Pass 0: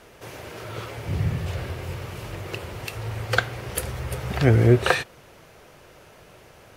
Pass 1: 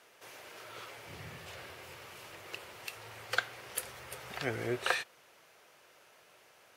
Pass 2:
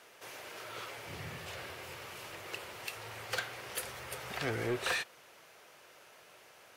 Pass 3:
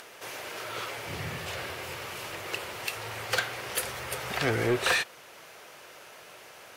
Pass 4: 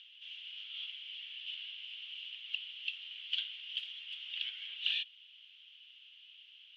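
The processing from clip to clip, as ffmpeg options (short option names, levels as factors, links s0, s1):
-af "highpass=f=1000:p=1,volume=0.422"
-af "asoftclip=type=tanh:threshold=0.0282,volume=1.5"
-af "acompressor=mode=upward:threshold=0.00224:ratio=2.5,volume=2.51"
-af "asuperpass=centerf=3100:order=4:qfactor=5.1,volume=1.5"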